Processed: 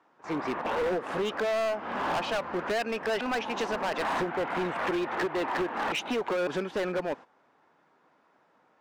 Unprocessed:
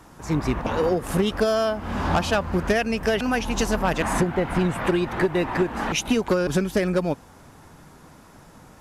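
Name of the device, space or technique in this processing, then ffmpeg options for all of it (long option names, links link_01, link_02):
walkie-talkie: -af "highpass=400,lowpass=2700,asoftclip=type=hard:threshold=-25.5dB,agate=range=-13dB:threshold=-42dB:ratio=16:detection=peak"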